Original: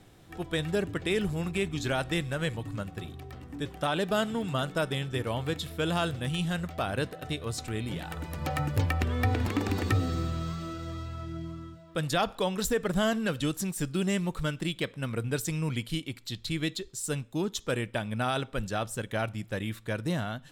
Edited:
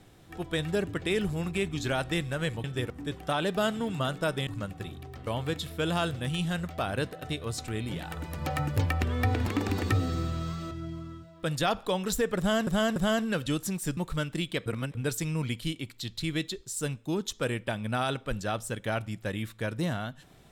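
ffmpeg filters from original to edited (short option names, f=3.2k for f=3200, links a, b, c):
-filter_complex "[0:a]asplit=11[a][b][c][d][e][f][g][h][i][j][k];[a]atrim=end=2.642[l];[b]atrim=start=5.008:end=5.272[m];[c]atrim=start=3.438:end=5.012[n];[d]atrim=start=2.638:end=3.442[o];[e]atrim=start=5.268:end=10.712[p];[f]atrim=start=11.228:end=13.192[q];[g]atrim=start=12.898:end=13.192[r];[h]atrim=start=12.898:end=13.912[s];[i]atrim=start=14.238:end=14.932[t];[j]atrim=start=14.928:end=15.222,asetpts=PTS-STARTPTS,areverse[u];[k]atrim=start=15.218[v];[l][m]acrossfade=d=0.004:c1=hsin:c2=hsin[w];[w][n]acrossfade=d=0.004:c1=hsin:c2=hsin[x];[x][o]acrossfade=d=0.004:c1=hsin:c2=hsin[y];[y][p]acrossfade=d=0.004:c1=hsin:c2=hsin[z];[z][q]acrossfade=d=0.004:c1=hsin:c2=hsin[aa];[aa][r]acrossfade=d=0.004:c1=hsin:c2=hsin[ab];[ab][s]acrossfade=d=0.004:c1=hsin:c2=hsin[ac];[ac][t]acrossfade=d=0.004:c1=hsin:c2=hsin[ad];[ad][u]acrossfade=d=0.004:c1=hsin:c2=hsin[ae];[ae][v]acrossfade=d=0.004:c1=hsin:c2=hsin"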